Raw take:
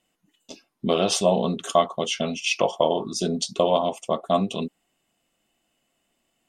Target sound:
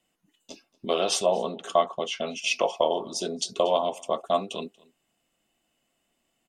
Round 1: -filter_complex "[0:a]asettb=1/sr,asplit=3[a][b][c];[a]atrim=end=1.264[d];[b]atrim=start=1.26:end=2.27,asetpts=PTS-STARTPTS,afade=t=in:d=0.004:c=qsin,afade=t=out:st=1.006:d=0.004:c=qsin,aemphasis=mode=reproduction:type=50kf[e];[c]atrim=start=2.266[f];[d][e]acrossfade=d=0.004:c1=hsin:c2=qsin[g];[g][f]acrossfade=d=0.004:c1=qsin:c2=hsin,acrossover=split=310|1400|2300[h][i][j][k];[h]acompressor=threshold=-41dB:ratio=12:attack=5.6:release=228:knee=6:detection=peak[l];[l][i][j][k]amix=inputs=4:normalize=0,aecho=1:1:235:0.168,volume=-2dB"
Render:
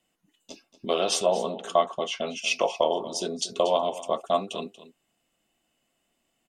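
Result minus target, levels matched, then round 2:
echo-to-direct +6 dB
-filter_complex "[0:a]asettb=1/sr,asplit=3[a][b][c];[a]atrim=end=1.264[d];[b]atrim=start=1.26:end=2.27,asetpts=PTS-STARTPTS,afade=t=in:d=0.004:c=qsin,afade=t=out:st=1.006:d=0.004:c=qsin,aemphasis=mode=reproduction:type=50kf[e];[c]atrim=start=2.266[f];[d][e]acrossfade=d=0.004:c1=hsin:c2=qsin[g];[g][f]acrossfade=d=0.004:c1=qsin:c2=hsin,acrossover=split=310|1400|2300[h][i][j][k];[h]acompressor=threshold=-41dB:ratio=12:attack=5.6:release=228:knee=6:detection=peak[l];[l][i][j][k]amix=inputs=4:normalize=0,aecho=1:1:235:0.0562,volume=-2dB"

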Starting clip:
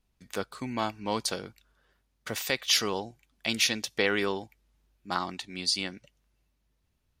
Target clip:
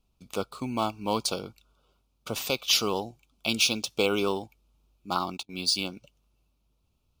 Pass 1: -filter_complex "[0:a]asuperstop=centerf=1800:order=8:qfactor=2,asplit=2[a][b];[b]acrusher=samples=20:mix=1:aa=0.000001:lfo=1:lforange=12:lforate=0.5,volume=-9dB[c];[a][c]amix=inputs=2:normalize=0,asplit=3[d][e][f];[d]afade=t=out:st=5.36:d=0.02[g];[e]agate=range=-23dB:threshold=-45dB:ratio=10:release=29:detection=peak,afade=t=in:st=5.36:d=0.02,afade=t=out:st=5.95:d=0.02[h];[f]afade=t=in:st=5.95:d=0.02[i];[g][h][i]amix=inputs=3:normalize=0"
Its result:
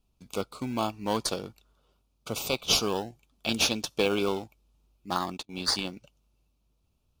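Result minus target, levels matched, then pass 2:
decimation with a swept rate: distortion +10 dB
-filter_complex "[0:a]asuperstop=centerf=1800:order=8:qfactor=2,asplit=2[a][b];[b]acrusher=samples=4:mix=1:aa=0.000001:lfo=1:lforange=2.4:lforate=0.5,volume=-9dB[c];[a][c]amix=inputs=2:normalize=0,asplit=3[d][e][f];[d]afade=t=out:st=5.36:d=0.02[g];[e]agate=range=-23dB:threshold=-45dB:ratio=10:release=29:detection=peak,afade=t=in:st=5.36:d=0.02,afade=t=out:st=5.95:d=0.02[h];[f]afade=t=in:st=5.95:d=0.02[i];[g][h][i]amix=inputs=3:normalize=0"

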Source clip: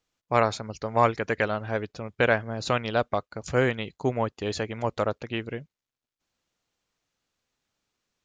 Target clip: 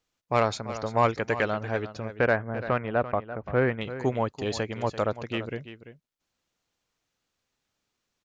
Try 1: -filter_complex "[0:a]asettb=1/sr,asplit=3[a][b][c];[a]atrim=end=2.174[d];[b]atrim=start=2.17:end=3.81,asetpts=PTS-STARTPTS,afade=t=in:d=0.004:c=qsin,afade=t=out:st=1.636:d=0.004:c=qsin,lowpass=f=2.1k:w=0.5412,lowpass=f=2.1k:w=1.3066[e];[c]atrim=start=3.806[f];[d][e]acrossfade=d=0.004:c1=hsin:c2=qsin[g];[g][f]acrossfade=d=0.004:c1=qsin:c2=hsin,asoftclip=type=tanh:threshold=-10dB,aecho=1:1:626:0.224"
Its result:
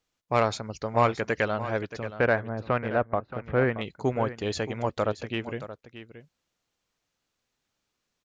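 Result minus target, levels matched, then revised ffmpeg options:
echo 0.286 s late
-filter_complex "[0:a]asettb=1/sr,asplit=3[a][b][c];[a]atrim=end=2.174[d];[b]atrim=start=2.17:end=3.81,asetpts=PTS-STARTPTS,afade=t=in:d=0.004:c=qsin,afade=t=out:st=1.636:d=0.004:c=qsin,lowpass=f=2.1k:w=0.5412,lowpass=f=2.1k:w=1.3066[e];[c]atrim=start=3.806[f];[d][e]acrossfade=d=0.004:c1=hsin:c2=qsin[g];[g][f]acrossfade=d=0.004:c1=qsin:c2=hsin,asoftclip=type=tanh:threshold=-10dB,aecho=1:1:340:0.224"

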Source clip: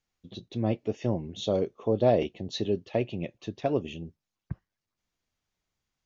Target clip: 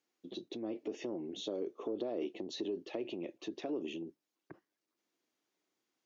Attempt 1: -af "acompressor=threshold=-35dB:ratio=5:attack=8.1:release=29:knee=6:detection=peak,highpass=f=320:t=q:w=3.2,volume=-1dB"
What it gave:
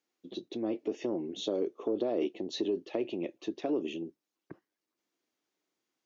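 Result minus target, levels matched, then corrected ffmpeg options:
compressor: peak gain reduction -7 dB
-af "acompressor=threshold=-43.5dB:ratio=5:attack=8.1:release=29:knee=6:detection=peak,highpass=f=320:t=q:w=3.2,volume=-1dB"

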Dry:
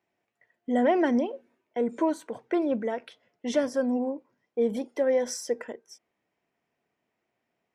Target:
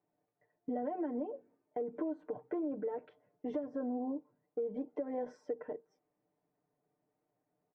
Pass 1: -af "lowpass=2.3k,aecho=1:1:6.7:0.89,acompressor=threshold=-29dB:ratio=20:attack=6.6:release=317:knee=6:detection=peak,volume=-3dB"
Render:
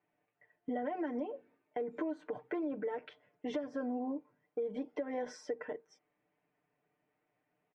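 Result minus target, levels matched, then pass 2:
2000 Hz band +10.5 dB
-af "lowpass=870,aecho=1:1:6.7:0.89,acompressor=threshold=-29dB:ratio=20:attack=6.6:release=317:knee=6:detection=peak,volume=-3dB"

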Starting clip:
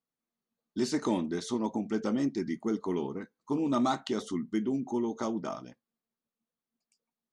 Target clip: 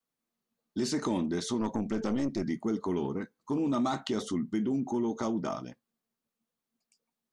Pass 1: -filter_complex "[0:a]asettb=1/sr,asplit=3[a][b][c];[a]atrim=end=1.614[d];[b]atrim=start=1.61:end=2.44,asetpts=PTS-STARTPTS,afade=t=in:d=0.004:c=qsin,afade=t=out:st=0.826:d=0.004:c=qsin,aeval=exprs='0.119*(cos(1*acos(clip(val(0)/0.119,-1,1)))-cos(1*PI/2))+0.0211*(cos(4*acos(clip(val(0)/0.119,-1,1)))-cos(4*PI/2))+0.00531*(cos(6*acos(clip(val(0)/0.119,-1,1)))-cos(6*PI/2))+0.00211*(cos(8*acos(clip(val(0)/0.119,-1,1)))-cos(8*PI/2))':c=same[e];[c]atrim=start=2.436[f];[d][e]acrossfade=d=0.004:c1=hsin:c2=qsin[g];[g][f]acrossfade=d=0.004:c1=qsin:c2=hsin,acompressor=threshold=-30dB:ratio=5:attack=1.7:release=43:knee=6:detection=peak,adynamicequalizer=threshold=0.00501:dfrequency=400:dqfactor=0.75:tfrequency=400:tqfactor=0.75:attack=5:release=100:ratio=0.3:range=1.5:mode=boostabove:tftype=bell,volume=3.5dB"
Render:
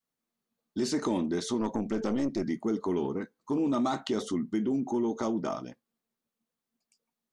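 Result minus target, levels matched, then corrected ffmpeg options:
125 Hz band -2.5 dB
-filter_complex "[0:a]asettb=1/sr,asplit=3[a][b][c];[a]atrim=end=1.614[d];[b]atrim=start=1.61:end=2.44,asetpts=PTS-STARTPTS,afade=t=in:d=0.004:c=qsin,afade=t=out:st=0.826:d=0.004:c=qsin,aeval=exprs='0.119*(cos(1*acos(clip(val(0)/0.119,-1,1)))-cos(1*PI/2))+0.0211*(cos(4*acos(clip(val(0)/0.119,-1,1)))-cos(4*PI/2))+0.00531*(cos(6*acos(clip(val(0)/0.119,-1,1)))-cos(6*PI/2))+0.00211*(cos(8*acos(clip(val(0)/0.119,-1,1)))-cos(8*PI/2))':c=same[e];[c]atrim=start=2.436[f];[d][e]acrossfade=d=0.004:c1=hsin:c2=qsin[g];[g][f]acrossfade=d=0.004:c1=qsin:c2=hsin,acompressor=threshold=-30dB:ratio=5:attack=1.7:release=43:knee=6:detection=peak,adynamicequalizer=threshold=0.00501:dfrequency=120:dqfactor=0.75:tfrequency=120:tqfactor=0.75:attack=5:release=100:ratio=0.3:range=1.5:mode=boostabove:tftype=bell,volume=3.5dB"

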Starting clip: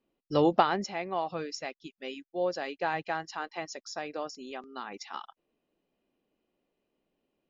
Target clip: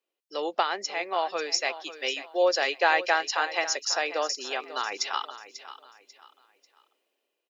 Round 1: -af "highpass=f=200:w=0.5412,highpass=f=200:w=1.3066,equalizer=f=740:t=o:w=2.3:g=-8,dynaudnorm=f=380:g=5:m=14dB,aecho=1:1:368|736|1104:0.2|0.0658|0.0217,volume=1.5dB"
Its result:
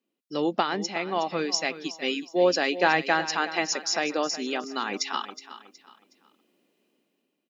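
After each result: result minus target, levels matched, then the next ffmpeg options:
250 Hz band +11.0 dB; echo 0.174 s early
-af "highpass=f=450:w=0.5412,highpass=f=450:w=1.3066,equalizer=f=740:t=o:w=2.3:g=-8,dynaudnorm=f=380:g=5:m=14dB,aecho=1:1:368|736|1104:0.2|0.0658|0.0217,volume=1.5dB"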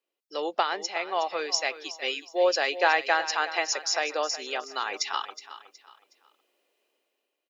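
echo 0.174 s early
-af "highpass=f=450:w=0.5412,highpass=f=450:w=1.3066,equalizer=f=740:t=o:w=2.3:g=-8,dynaudnorm=f=380:g=5:m=14dB,aecho=1:1:542|1084|1626:0.2|0.0658|0.0217,volume=1.5dB"

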